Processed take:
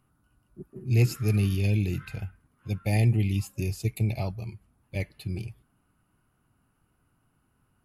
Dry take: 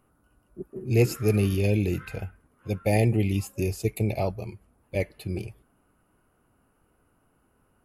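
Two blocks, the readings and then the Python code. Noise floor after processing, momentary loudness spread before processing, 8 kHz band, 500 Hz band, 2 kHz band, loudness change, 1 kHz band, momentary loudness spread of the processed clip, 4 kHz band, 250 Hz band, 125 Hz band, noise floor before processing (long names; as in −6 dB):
−71 dBFS, 18 LU, −3.0 dB, −9.5 dB, −2.5 dB, −1.0 dB, −6.5 dB, 17 LU, −0.5 dB, −3.5 dB, +1.0 dB, −68 dBFS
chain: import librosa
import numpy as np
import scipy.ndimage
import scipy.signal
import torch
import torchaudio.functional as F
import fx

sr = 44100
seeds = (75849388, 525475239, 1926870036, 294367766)

y = fx.graphic_eq(x, sr, hz=(125, 500, 4000), db=(6, -8, 4))
y = y * librosa.db_to_amplitude(-3.5)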